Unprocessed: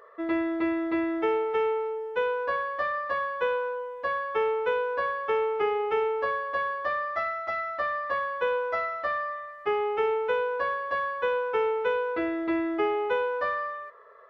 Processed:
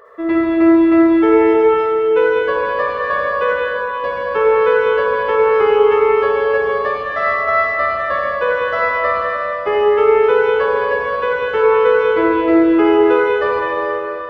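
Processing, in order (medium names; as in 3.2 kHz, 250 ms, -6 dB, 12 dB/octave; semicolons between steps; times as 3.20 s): bass shelf 350 Hz +5.5 dB; reverberation RT60 3.3 s, pre-delay 48 ms, DRR -3.5 dB; trim +6 dB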